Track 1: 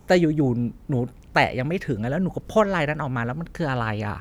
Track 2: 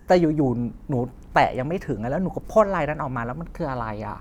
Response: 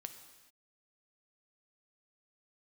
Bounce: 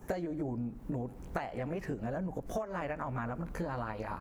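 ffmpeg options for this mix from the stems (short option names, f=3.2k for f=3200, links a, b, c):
-filter_complex "[0:a]highpass=f=230:p=1,equalizer=f=3.6k:w=0.8:g=-11.5,volume=-0.5dB[a];[1:a]acompressor=threshold=-21dB:ratio=3,volume=-1,adelay=19,volume=-4.5dB,asplit=3[b][c][d];[c]volume=-7.5dB[e];[d]apad=whole_len=185436[f];[a][f]sidechaincompress=threshold=-37dB:ratio=8:attack=16:release=136[g];[2:a]atrim=start_sample=2205[h];[e][h]afir=irnorm=-1:irlink=0[i];[g][b][i]amix=inputs=3:normalize=0,acompressor=threshold=-34dB:ratio=5"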